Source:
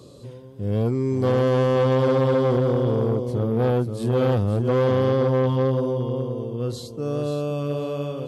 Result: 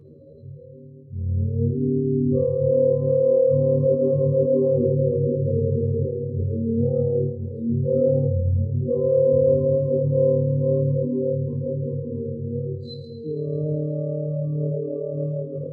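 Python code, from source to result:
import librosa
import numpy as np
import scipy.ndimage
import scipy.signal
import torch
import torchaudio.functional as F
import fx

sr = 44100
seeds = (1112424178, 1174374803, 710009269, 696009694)

y = fx.spec_expand(x, sr, power=2.9)
y = fx.rev_schroeder(y, sr, rt60_s=0.66, comb_ms=27, drr_db=7.0)
y = fx.stretch_grains(y, sr, factor=1.9, grain_ms=54.0)
y = F.gain(torch.from_numpy(y), 1.5).numpy()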